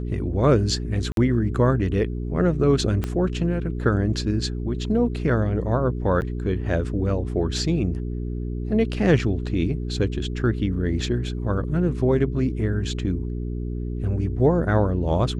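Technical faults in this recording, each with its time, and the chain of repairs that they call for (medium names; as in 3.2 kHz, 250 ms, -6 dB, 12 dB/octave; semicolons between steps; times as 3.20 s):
hum 60 Hz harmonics 7 -28 dBFS
1.12–1.17 s: dropout 52 ms
3.04 s: pop -13 dBFS
6.21–6.22 s: dropout 9.3 ms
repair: de-click; de-hum 60 Hz, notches 7; interpolate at 1.12 s, 52 ms; interpolate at 6.21 s, 9.3 ms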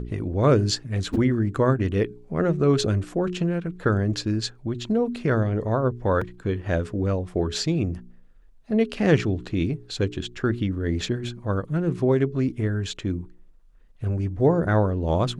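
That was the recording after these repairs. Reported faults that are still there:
3.04 s: pop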